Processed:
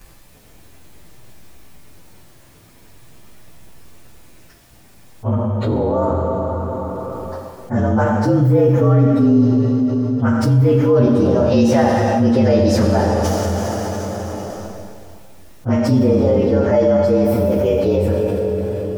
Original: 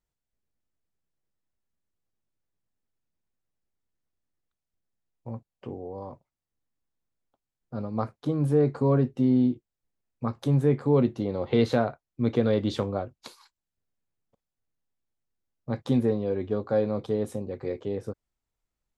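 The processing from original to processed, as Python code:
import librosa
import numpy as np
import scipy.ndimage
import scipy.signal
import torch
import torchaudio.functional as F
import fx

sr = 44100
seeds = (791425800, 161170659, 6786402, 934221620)

y = fx.partial_stretch(x, sr, pct=113)
y = fx.rev_plate(y, sr, seeds[0], rt60_s=2.2, hf_ratio=0.95, predelay_ms=0, drr_db=1.5)
y = fx.env_flatten(y, sr, amount_pct=70)
y = F.gain(torch.from_numpy(y), 5.0).numpy()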